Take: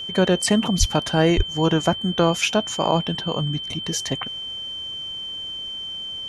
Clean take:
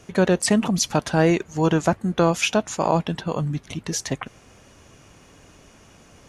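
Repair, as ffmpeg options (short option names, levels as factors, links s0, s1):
-filter_complex "[0:a]bandreject=f=3100:w=30,asplit=3[s0][s1][s2];[s0]afade=t=out:st=0.79:d=0.02[s3];[s1]highpass=f=140:w=0.5412,highpass=f=140:w=1.3066,afade=t=in:st=0.79:d=0.02,afade=t=out:st=0.91:d=0.02[s4];[s2]afade=t=in:st=0.91:d=0.02[s5];[s3][s4][s5]amix=inputs=3:normalize=0,asplit=3[s6][s7][s8];[s6]afade=t=out:st=1.36:d=0.02[s9];[s7]highpass=f=140:w=0.5412,highpass=f=140:w=1.3066,afade=t=in:st=1.36:d=0.02,afade=t=out:st=1.48:d=0.02[s10];[s8]afade=t=in:st=1.48:d=0.02[s11];[s9][s10][s11]amix=inputs=3:normalize=0"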